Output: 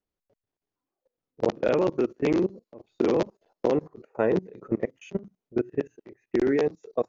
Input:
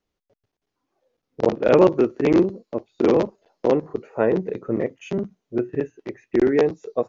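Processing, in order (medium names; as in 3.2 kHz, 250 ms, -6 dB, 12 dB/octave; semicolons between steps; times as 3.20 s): treble shelf 3.8 kHz +5.5 dB; level held to a coarse grid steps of 22 dB; tape noise reduction on one side only decoder only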